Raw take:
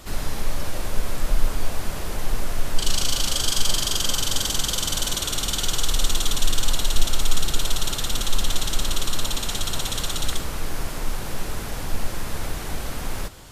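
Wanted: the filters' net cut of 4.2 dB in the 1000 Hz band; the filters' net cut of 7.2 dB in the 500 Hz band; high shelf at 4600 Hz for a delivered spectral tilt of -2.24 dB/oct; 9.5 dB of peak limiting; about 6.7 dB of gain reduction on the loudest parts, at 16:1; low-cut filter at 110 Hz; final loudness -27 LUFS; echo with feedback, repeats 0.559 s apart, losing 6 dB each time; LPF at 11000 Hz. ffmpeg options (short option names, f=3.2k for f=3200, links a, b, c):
-af "highpass=110,lowpass=11k,equalizer=f=500:t=o:g=-8.5,equalizer=f=1k:t=o:g=-3.5,highshelf=f=4.6k:g=6,acompressor=threshold=-24dB:ratio=16,alimiter=limit=-22dB:level=0:latency=1,aecho=1:1:559|1118|1677|2236|2795|3354:0.501|0.251|0.125|0.0626|0.0313|0.0157,volume=4dB"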